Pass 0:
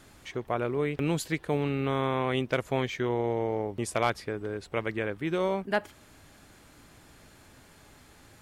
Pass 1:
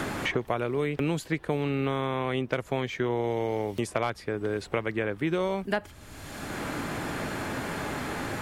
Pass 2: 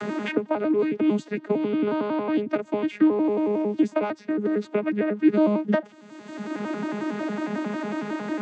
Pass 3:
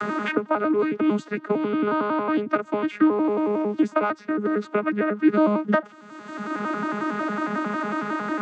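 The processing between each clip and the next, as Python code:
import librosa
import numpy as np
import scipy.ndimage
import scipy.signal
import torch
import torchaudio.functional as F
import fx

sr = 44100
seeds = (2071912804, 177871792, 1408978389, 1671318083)

y1 = fx.band_squash(x, sr, depth_pct=100)
y2 = fx.vocoder_arp(y1, sr, chord='bare fifth', root=56, every_ms=91)
y2 = y2 * librosa.db_to_amplitude(6.5)
y3 = fx.peak_eq(y2, sr, hz=1300.0, db=12.5, octaves=0.6)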